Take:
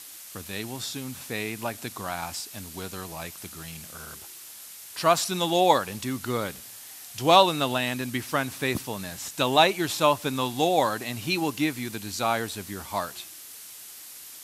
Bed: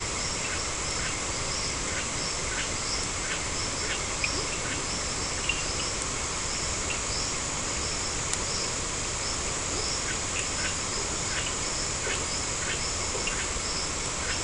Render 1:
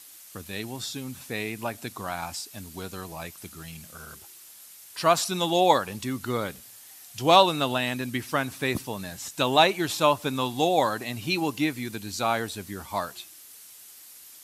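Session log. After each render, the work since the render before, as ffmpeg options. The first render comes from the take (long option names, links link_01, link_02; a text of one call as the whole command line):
ffmpeg -i in.wav -af "afftdn=noise_reduction=6:noise_floor=-44" out.wav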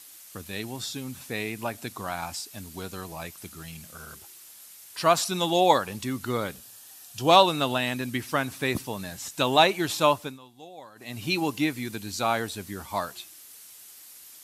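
ffmpeg -i in.wav -filter_complex "[0:a]asettb=1/sr,asplit=3[link_01][link_02][link_03];[link_01]atrim=end=6.554[link_04];[link_02]atrim=start=6.55:end=7.31,asetpts=PTS-STARTPTS,afade=type=in:duration=0.004:curve=qsin,afade=type=out:start_time=0.756:duration=0.004:curve=qsin,bandreject=frequency=2100:width=5.7[link_05];[link_03]atrim=start=7.306[link_06];[link_04][link_05]acrossfade=duration=0.004:curve1=hsin:curve2=qsin[link_07];[link_07][link_06]acrossfade=duration=0.004:curve1=qsin:curve2=hsin,asplit=3[link_08][link_09][link_10];[link_08]atrim=end=10.39,asetpts=PTS-STARTPTS,afade=type=out:start_time=10.11:duration=0.28:silence=0.0749894[link_11];[link_09]atrim=start=10.39:end=10.95,asetpts=PTS-STARTPTS,volume=-22.5dB[link_12];[link_10]atrim=start=10.95,asetpts=PTS-STARTPTS,afade=type=in:duration=0.28:silence=0.0749894[link_13];[link_11][link_12][link_13]concat=n=3:v=0:a=1" out.wav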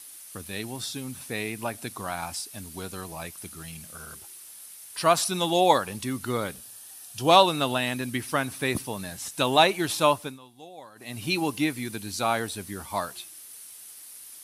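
ffmpeg -i in.wav -af "equalizer=frequency=9800:width=6.6:gain=11,bandreject=frequency=7000:width=21" out.wav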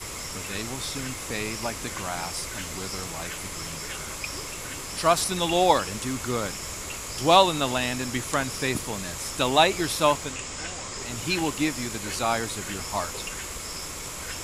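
ffmpeg -i in.wav -i bed.wav -filter_complex "[1:a]volume=-5.5dB[link_01];[0:a][link_01]amix=inputs=2:normalize=0" out.wav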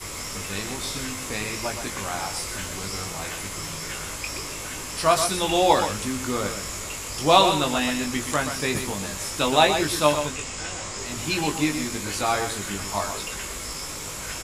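ffmpeg -i in.wav -filter_complex "[0:a]asplit=2[link_01][link_02];[link_02]adelay=20,volume=-4.5dB[link_03];[link_01][link_03]amix=inputs=2:normalize=0,asplit=2[link_04][link_05];[link_05]aecho=0:1:124:0.398[link_06];[link_04][link_06]amix=inputs=2:normalize=0" out.wav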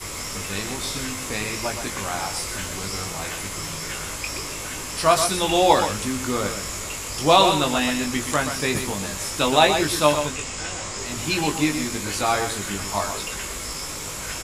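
ffmpeg -i in.wav -af "volume=2dB,alimiter=limit=-3dB:level=0:latency=1" out.wav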